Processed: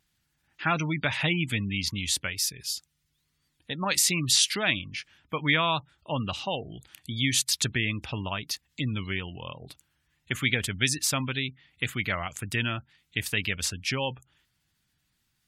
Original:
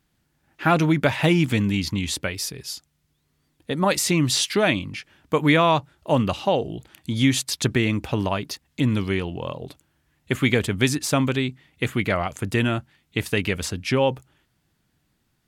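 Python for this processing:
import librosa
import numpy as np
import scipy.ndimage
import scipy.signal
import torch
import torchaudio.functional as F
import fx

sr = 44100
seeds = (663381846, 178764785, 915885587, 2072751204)

y = fx.spec_gate(x, sr, threshold_db=-30, keep='strong')
y = fx.tone_stack(y, sr, knobs='5-5-5')
y = fx.wow_flutter(y, sr, seeds[0], rate_hz=2.1, depth_cents=29.0)
y = y * librosa.db_to_amplitude(7.5)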